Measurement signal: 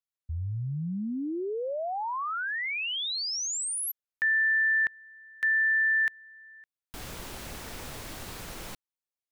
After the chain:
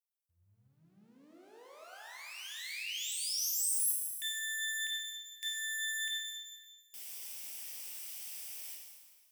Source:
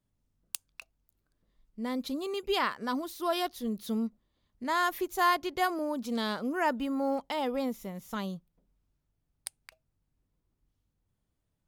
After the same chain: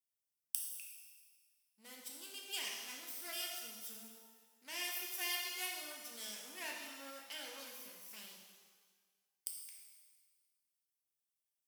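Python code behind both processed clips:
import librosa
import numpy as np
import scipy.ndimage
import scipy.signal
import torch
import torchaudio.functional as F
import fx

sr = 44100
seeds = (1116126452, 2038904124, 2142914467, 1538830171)

y = fx.lower_of_two(x, sr, delay_ms=0.37)
y = scipy.signal.sosfilt(scipy.signal.butter(2, 77.0, 'highpass', fs=sr, output='sos'), y)
y = np.diff(y, prepend=0.0)
y = fx.rev_shimmer(y, sr, seeds[0], rt60_s=1.5, semitones=12, shimmer_db=-8, drr_db=-1.0)
y = y * librosa.db_to_amplitude(-3.5)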